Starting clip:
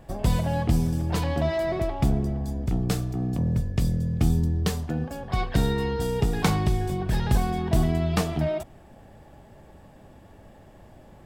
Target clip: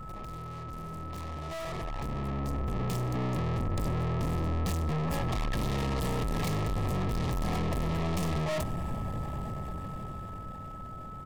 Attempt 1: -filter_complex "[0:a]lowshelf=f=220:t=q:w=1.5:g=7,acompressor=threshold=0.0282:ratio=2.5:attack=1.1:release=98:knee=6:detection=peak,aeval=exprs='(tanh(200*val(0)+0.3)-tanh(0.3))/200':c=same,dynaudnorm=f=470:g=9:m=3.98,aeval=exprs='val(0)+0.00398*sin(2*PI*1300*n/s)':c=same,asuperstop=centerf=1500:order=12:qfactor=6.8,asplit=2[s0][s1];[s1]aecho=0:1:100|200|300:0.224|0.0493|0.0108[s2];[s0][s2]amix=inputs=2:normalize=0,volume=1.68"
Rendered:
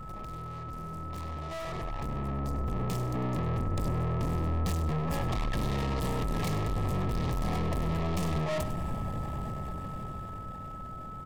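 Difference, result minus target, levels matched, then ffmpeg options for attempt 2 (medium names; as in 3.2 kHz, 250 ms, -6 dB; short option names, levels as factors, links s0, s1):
echo-to-direct +10 dB; compression: peak gain reduction +4 dB
-filter_complex "[0:a]lowshelf=f=220:t=q:w=1.5:g=7,acompressor=threshold=0.0596:ratio=2.5:attack=1.1:release=98:knee=6:detection=peak,aeval=exprs='(tanh(200*val(0)+0.3)-tanh(0.3))/200':c=same,dynaudnorm=f=470:g=9:m=3.98,aeval=exprs='val(0)+0.00398*sin(2*PI*1300*n/s)':c=same,asuperstop=centerf=1500:order=12:qfactor=6.8,asplit=2[s0][s1];[s1]aecho=0:1:100|200:0.0708|0.0156[s2];[s0][s2]amix=inputs=2:normalize=0,volume=1.68"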